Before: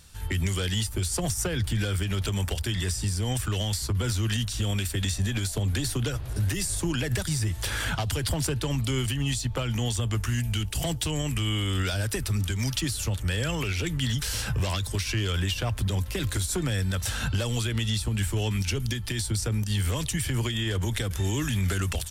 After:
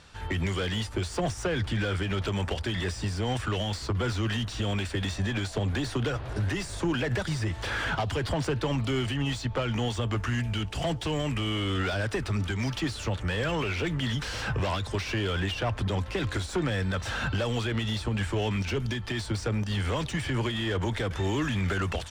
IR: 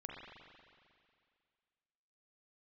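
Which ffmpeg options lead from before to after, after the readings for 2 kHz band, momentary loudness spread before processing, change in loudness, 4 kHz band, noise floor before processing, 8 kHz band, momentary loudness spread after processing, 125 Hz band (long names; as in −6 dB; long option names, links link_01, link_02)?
+1.5 dB, 2 LU, −2.0 dB, −3.0 dB, −34 dBFS, −11.0 dB, 2 LU, −3.0 dB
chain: -filter_complex "[0:a]lowpass=7100,asplit=2[link_01][link_02];[link_02]highpass=frequency=720:poles=1,volume=18dB,asoftclip=type=tanh:threshold=-17dB[link_03];[link_01][link_03]amix=inputs=2:normalize=0,lowpass=frequency=1000:poles=1,volume=-6dB"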